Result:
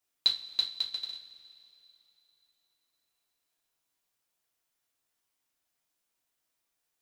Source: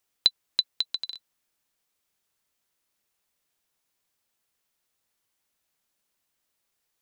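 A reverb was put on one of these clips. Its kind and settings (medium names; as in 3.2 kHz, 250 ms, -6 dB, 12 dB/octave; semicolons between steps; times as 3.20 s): two-slope reverb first 0.27 s, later 3.2 s, from -22 dB, DRR -4 dB; trim -9 dB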